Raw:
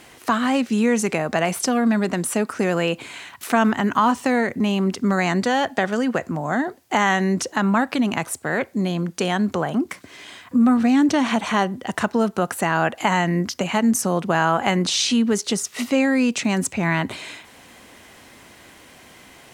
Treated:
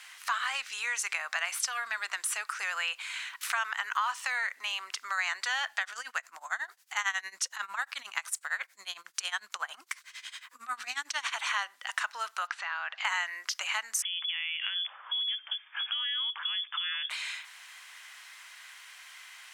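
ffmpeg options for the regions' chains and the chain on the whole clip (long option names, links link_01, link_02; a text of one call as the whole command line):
ffmpeg -i in.wav -filter_complex "[0:a]asettb=1/sr,asplit=3[link_01][link_02][link_03];[link_01]atrim=end=5.814[link_04];[link_02]atrim=start=5.81:end=11.34,asetpts=PTS-STARTPTS,afade=type=in:duration=0.004:curve=qsin,afade=type=out:start_time=5.526:duration=0.004:curve=qsin,tremolo=f=11:d=0.9,bass=frequency=250:gain=15,treble=frequency=4000:gain=5[link_05];[link_03]atrim=start=11.336[link_06];[link_04][link_05]acrossfade=duration=0.004:curve1=hsin:curve2=qsin[link_07];[link_07][link_06]acrossfade=duration=0.004:curve1=qsin:curve2=hsin,asettb=1/sr,asplit=3[link_08][link_09][link_10];[link_08]atrim=end=12.474[link_11];[link_09]atrim=start=12.47:end=13.05,asetpts=PTS-STARTPTS,afade=type=in:duration=0.004:curve=qsin,afade=type=out:start_time=0.576:duration=0.004:curve=qsin,lowpass=frequency=4900:width=0.5412,lowpass=frequency=4900:width=1.3066,acompressor=threshold=-22dB:ratio=5:attack=3.2:release=140:knee=1:detection=peak[link_12];[link_10]atrim=start=13.046[link_13];[link_11][link_12]acrossfade=duration=0.004:curve1=hsin:curve2=qsin[link_14];[link_14][link_13]acrossfade=duration=0.004:curve1=qsin:curve2=hsin,asettb=1/sr,asplit=3[link_15][link_16][link_17];[link_15]atrim=end=14.024[link_18];[link_16]atrim=start=14.02:end=17.1,asetpts=PTS-STARTPTS,afade=type=in:duration=0.004:curve=qsin,afade=type=out:start_time=3.076:duration=0.004:curve=qsin,acompressor=threshold=-27dB:ratio=8:attack=3.2:release=140:knee=1:detection=peak,lowpass=frequency=3100:width_type=q:width=0.5098,lowpass=frequency=3100:width_type=q:width=0.6013,lowpass=frequency=3100:width_type=q:width=0.9,lowpass=frequency=3100:width_type=q:width=2.563,afreqshift=-3600[link_19];[link_17]atrim=start=17.096[link_20];[link_18][link_19]acrossfade=duration=0.004:curve1=hsin:curve2=qsin[link_21];[link_21][link_20]acrossfade=duration=0.004:curve1=qsin:curve2=hsin,highpass=frequency=1200:width=0.5412,highpass=frequency=1200:width=1.3066,highshelf=frequency=11000:gain=-8,acompressor=threshold=-30dB:ratio=2" out.wav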